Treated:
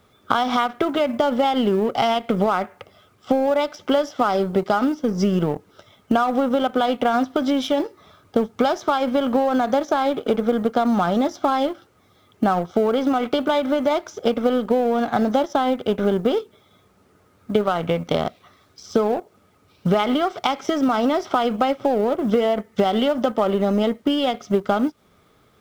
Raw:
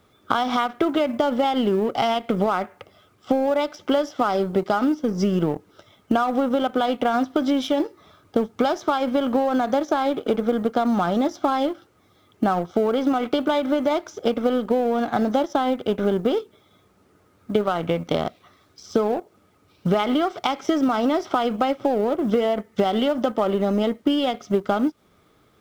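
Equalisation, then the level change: bell 320 Hz -5.5 dB 0.24 oct; +2.0 dB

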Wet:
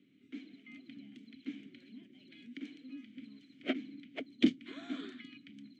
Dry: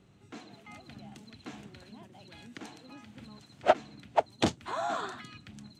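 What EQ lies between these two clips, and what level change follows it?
HPF 130 Hz; dynamic EQ 250 Hz, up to +4 dB, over -43 dBFS, Q 0.75; vowel filter i; +7.5 dB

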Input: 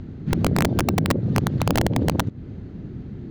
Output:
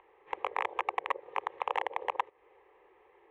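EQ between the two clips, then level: inverse Chebyshev high-pass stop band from 290 Hz, stop band 40 dB; LPF 1800 Hz 12 dB/oct; fixed phaser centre 970 Hz, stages 8; 0.0 dB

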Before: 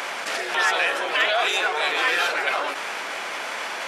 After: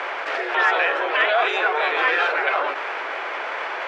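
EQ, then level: Chebyshev high-pass 360 Hz, order 3; LPF 2100 Hz 12 dB/oct; +4.5 dB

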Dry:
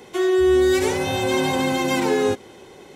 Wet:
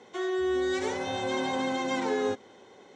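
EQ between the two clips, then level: speaker cabinet 140–6500 Hz, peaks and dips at 150 Hz -9 dB, 350 Hz -6 dB, 2600 Hz -7 dB, 4800 Hz -6 dB; -6.5 dB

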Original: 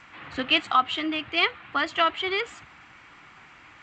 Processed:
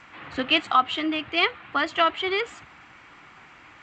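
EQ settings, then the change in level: bell 470 Hz +3 dB 2.4 oct; 0.0 dB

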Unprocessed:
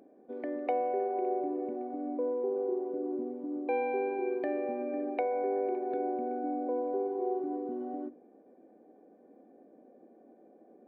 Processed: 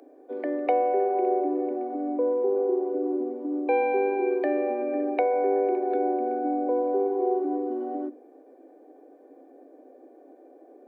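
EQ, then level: steep high-pass 260 Hz 96 dB/oct; +7.5 dB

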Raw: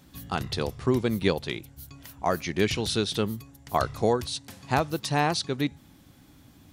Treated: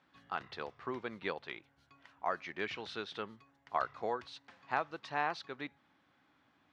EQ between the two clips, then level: band-pass 1400 Hz, Q 1; air absorption 110 m; -4.5 dB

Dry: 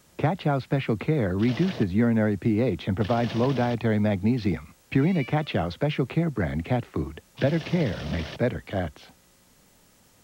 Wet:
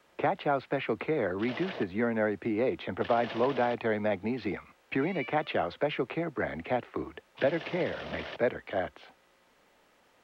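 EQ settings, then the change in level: three-band isolator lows -14 dB, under 320 Hz, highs -17 dB, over 3400 Hz; bell 120 Hz -3.5 dB 1.6 oct; 0.0 dB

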